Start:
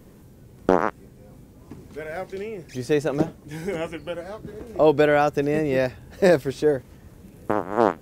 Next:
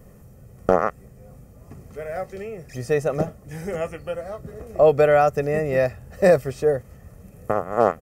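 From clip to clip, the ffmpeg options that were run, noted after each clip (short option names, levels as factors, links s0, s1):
-af "equalizer=f=3700:w=2:g=-11,aecho=1:1:1.6:0.61"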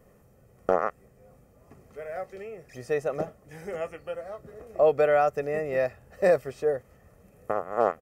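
-af "bass=f=250:g=-9,treble=f=4000:g=-5,volume=0.562"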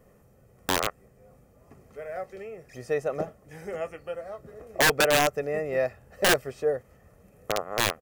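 -af "aeval=exprs='(mod(5.62*val(0)+1,2)-1)/5.62':c=same"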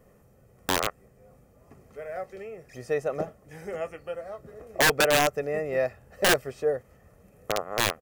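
-af anull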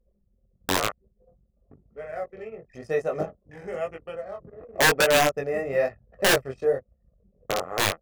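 -af "flanger=delay=18:depth=5:speed=0.99,anlmdn=0.00631,volume=1.68"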